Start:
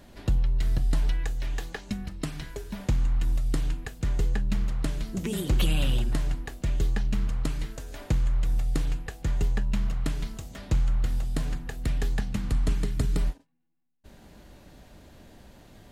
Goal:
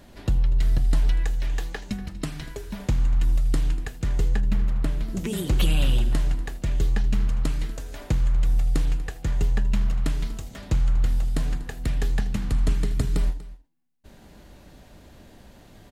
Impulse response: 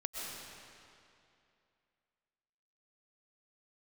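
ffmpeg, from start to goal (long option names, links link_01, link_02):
-filter_complex "[0:a]asettb=1/sr,asplit=3[link_01][link_02][link_03];[link_01]atrim=end=4.404[link_04];[link_02]atrim=start=4.4:end=5.1,asetpts=PTS-STARTPTS,afade=type=in:duration=0.004:curve=qsin,afade=type=out:start_time=0.696:duration=0.004:curve=qsin,equalizer=frequency=6700:width=0.53:gain=-7.5[link_05];[link_03]atrim=start=5.096[link_06];[link_04][link_05]acrossfade=duration=0.004:curve1=hsin:curve2=qsin[link_07];[link_07][link_06]acrossfade=duration=0.004:curve1=qsin:curve2=hsin,aecho=1:1:241:0.126,asplit=2[link_08][link_09];[1:a]atrim=start_sample=2205,atrim=end_sample=6174,asetrate=66150,aresample=44100[link_10];[link_09][link_10]afir=irnorm=-1:irlink=0,volume=-6.5dB[link_11];[link_08][link_11]amix=inputs=2:normalize=0"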